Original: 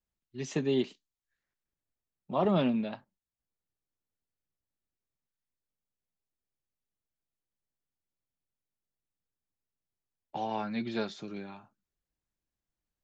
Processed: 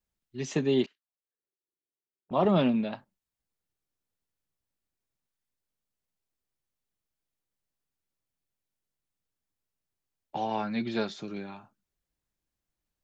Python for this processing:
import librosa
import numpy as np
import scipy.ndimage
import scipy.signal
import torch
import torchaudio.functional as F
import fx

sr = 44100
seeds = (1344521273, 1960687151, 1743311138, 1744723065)

y = fx.auto_wah(x, sr, base_hz=370.0, top_hz=1600.0, q=5.0, full_db=-52.0, direction='up', at=(0.86, 2.31))
y = y * 10.0 ** (3.0 / 20.0)